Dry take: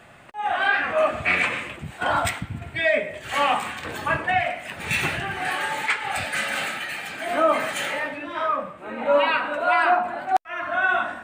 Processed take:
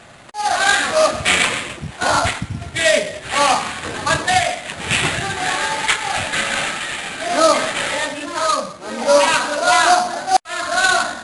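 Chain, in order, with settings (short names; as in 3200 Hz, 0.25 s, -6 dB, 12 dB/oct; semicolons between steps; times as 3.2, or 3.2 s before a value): sample-rate reducer 5500 Hz, jitter 20%; gain +6.5 dB; MP3 80 kbps 24000 Hz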